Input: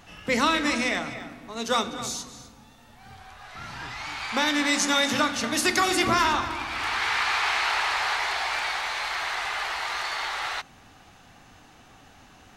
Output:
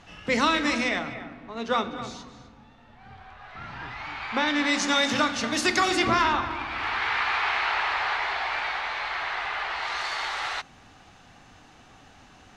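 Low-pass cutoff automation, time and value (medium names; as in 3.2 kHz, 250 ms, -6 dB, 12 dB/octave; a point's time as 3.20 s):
0.75 s 6.5 kHz
1.22 s 2.8 kHz
4.31 s 2.8 kHz
4.99 s 6.7 kHz
5.87 s 6.7 kHz
6.38 s 3.2 kHz
9.68 s 3.2 kHz
10.08 s 8 kHz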